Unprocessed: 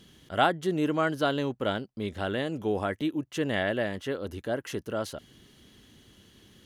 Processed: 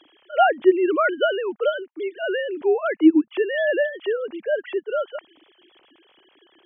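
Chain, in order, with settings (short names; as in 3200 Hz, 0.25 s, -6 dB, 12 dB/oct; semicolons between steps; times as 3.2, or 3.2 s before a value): sine-wave speech; gain +8 dB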